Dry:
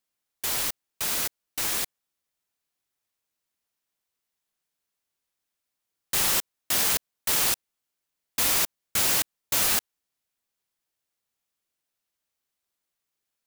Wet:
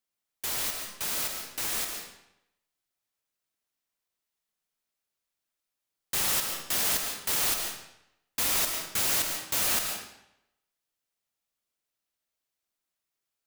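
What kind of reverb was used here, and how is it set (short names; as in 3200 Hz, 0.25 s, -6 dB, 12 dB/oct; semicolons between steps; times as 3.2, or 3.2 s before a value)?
digital reverb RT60 0.82 s, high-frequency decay 0.9×, pre-delay 95 ms, DRR 3.5 dB; gain -4 dB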